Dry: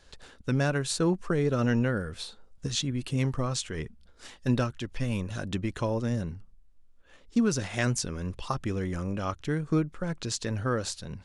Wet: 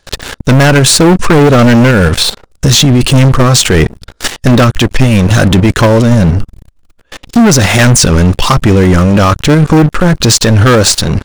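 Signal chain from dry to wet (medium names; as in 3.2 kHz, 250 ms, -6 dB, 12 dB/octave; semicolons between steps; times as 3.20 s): level held to a coarse grid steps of 9 dB; waveshaping leveller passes 5; loudness maximiser +19.5 dB; trim -1 dB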